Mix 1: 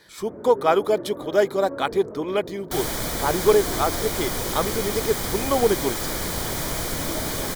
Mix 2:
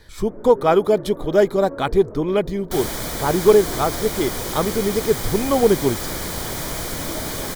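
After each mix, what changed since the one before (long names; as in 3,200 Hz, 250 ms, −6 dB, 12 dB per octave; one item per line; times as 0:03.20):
speech: remove high-pass filter 580 Hz 6 dB per octave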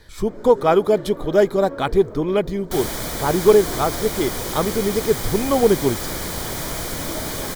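first sound: remove Gaussian smoothing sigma 5.1 samples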